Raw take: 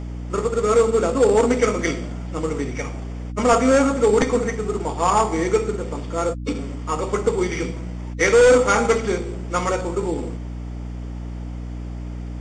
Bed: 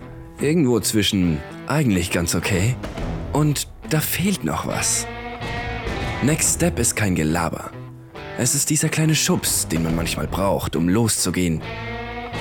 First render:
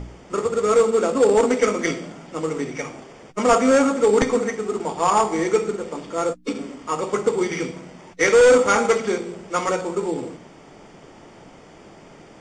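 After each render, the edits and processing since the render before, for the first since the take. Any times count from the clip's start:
hum removal 60 Hz, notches 5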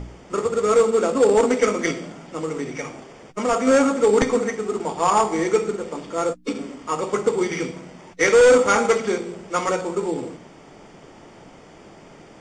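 0:01.91–0:03.67: downward compressor 1.5 to 1, threshold −25 dBFS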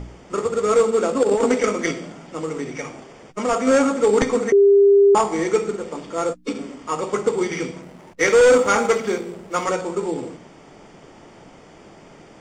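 0:01.23–0:01.64: compressor whose output falls as the input rises −17 dBFS, ratio −0.5
0:04.52–0:05.15: beep over 400 Hz −9 dBFS
0:07.82–0:09.65: slack as between gear wheels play −46 dBFS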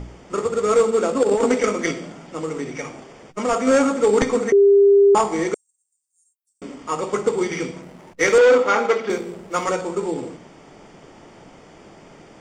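0:05.54–0:06.62: inverse Chebyshev high-pass filter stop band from 2,600 Hz, stop band 80 dB
0:08.38–0:09.10: three-way crossover with the lows and the highs turned down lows −17 dB, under 220 Hz, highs −22 dB, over 5,300 Hz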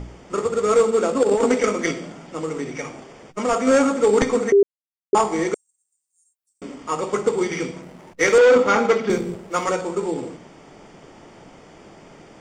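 0:04.63–0:05.13: silence
0:08.56–0:09.36: bass and treble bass +12 dB, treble +2 dB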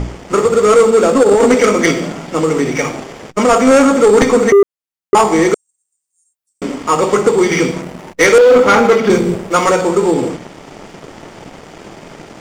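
in parallel at +1 dB: downward compressor, threshold −23 dBFS, peak gain reduction 13 dB
on the sum: leveller curve on the samples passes 2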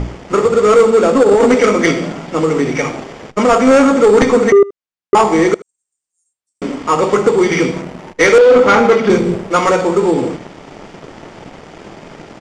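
high-frequency loss of the air 60 metres
single-tap delay 77 ms −21 dB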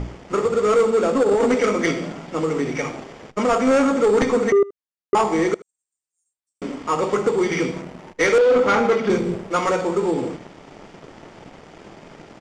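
level −8 dB

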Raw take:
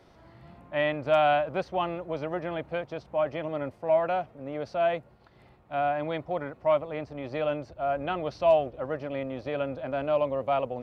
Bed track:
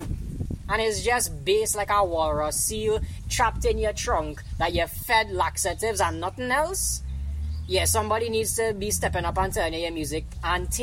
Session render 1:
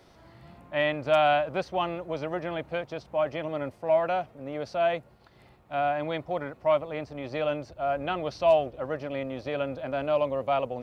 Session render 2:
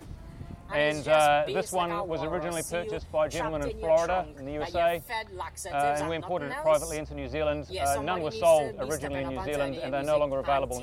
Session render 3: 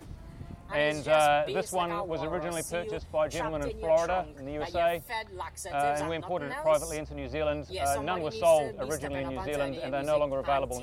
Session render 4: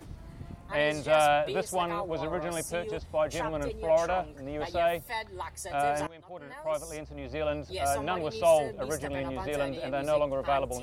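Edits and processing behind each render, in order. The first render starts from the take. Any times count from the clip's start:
high-shelf EQ 3,700 Hz +7.5 dB
mix in bed track −12.5 dB
level −1.5 dB
0:06.07–0:07.70: fade in, from −19 dB

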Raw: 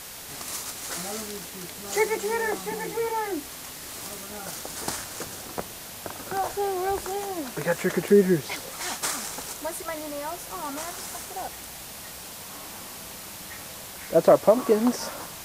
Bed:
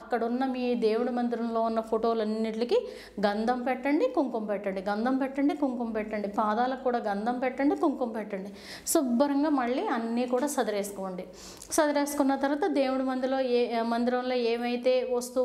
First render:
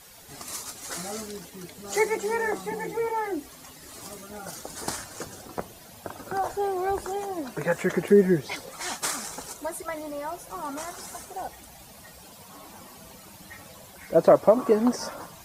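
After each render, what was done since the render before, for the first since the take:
broadband denoise 12 dB, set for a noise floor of −40 dBFS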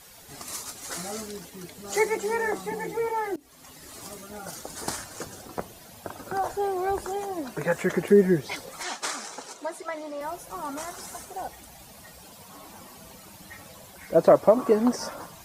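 0:03.36–0:03.77: fade in, from −23.5 dB
0:08.83–0:10.21: three-way crossover with the lows and the highs turned down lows −19 dB, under 220 Hz, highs −17 dB, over 7,900 Hz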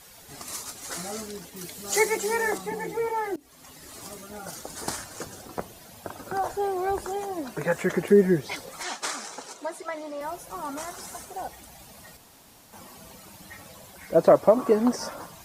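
0:01.56–0:02.58: high-shelf EQ 2,800 Hz +8 dB
0:12.17–0:12.73: fill with room tone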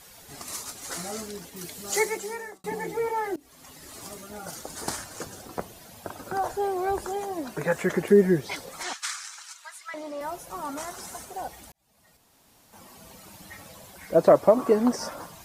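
0:01.81–0:02.64: fade out
0:08.93–0:09.94: high-pass filter 1,300 Hz 24 dB per octave
0:11.72–0:13.33: fade in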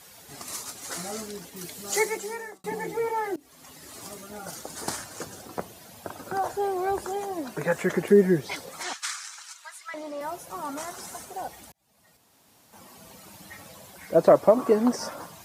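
high-pass filter 79 Hz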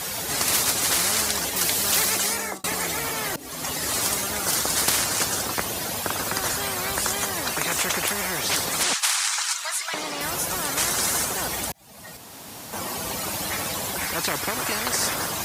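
every bin compressed towards the loudest bin 10 to 1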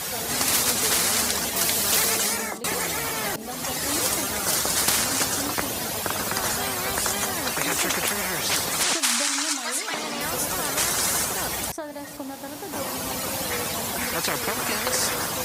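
mix in bed −10 dB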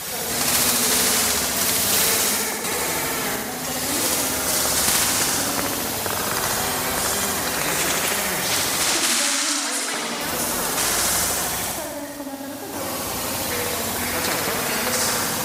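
flutter between parallel walls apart 12 metres, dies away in 1.4 s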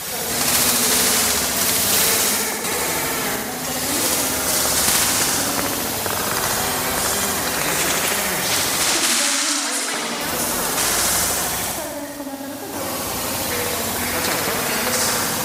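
level +2 dB

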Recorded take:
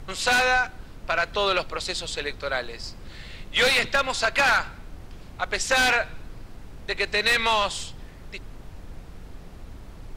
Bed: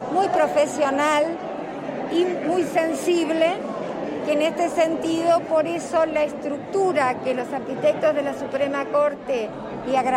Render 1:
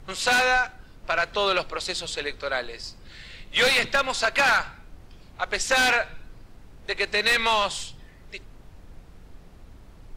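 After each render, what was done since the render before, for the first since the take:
noise reduction from a noise print 6 dB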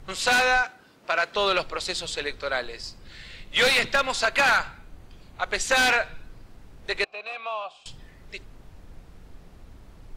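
0:00.63–0:01.36: high-pass filter 220 Hz
0:04.24–0:05.77: notch filter 5,300 Hz
0:07.04–0:07.86: formant filter a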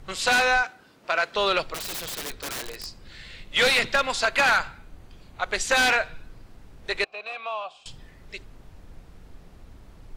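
0:01.74–0:02.87: wrap-around overflow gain 27 dB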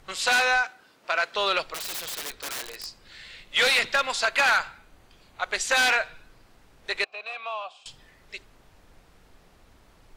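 low-shelf EQ 350 Hz −11.5 dB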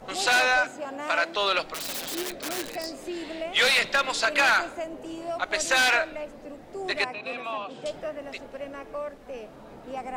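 mix in bed −14.5 dB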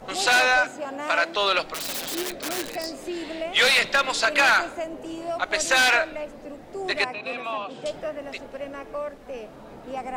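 level +2.5 dB

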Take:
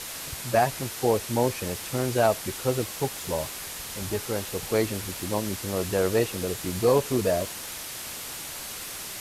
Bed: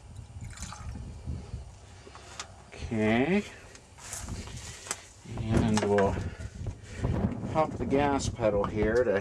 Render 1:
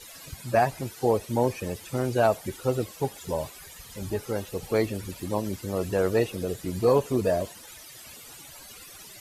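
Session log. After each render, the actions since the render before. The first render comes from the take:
broadband denoise 15 dB, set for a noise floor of −37 dBFS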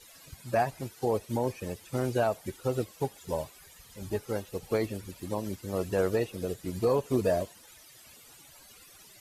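brickwall limiter −16 dBFS, peak gain reduction 6.5 dB
expander for the loud parts 1.5 to 1, over −38 dBFS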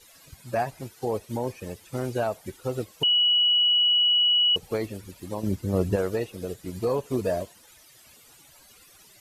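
0:03.03–0:04.56: beep over 2,930 Hz −17.5 dBFS
0:05.43–0:05.96: low-shelf EQ 430 Hz +12 dB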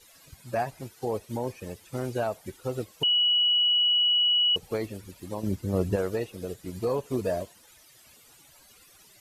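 level −2 dB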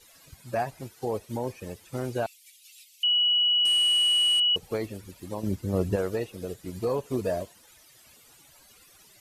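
0:02.26–0:03.04: Butterworth high-pass 2,300 Hz 48 dB per octave
0:03.65–0:04.40: variable-slope delta modulation 64 kbit/s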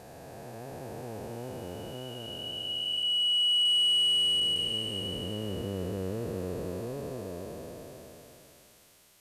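spectrum smeared in time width 1,440 ms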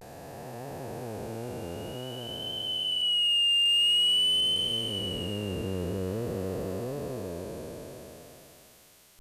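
in parallel at −8.5 dB: soft clipping −31 dBFS, distortion −9 dB
on the sum: pitch vibrato 0.49 Hz 71 cents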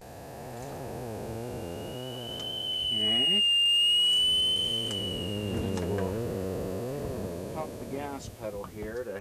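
mix in bed −10.5 dB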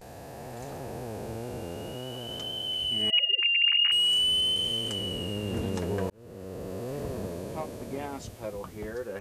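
0:03.10–0:03.92: three sine waves on the formant tracks
0:06.10–0:06.97: fade in

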